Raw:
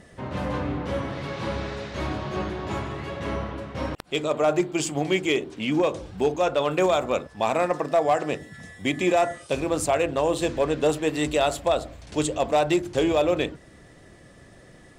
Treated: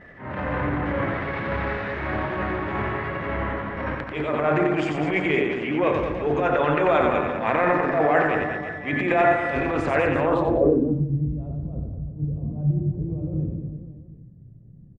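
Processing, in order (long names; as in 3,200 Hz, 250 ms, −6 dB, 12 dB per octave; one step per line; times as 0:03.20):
transient designer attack −11 dB, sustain +8 dB
reverse bouncing-ball delay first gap 90 ms, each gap 1.25×, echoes 5
low-pass filter sweep 1,900 Hz → 150 Hz, 0:10.21–0:11.08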